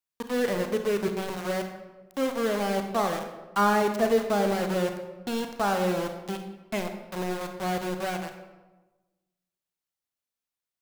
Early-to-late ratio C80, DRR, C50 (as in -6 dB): 9.0 dB, 5.5 dB, 7.5 dB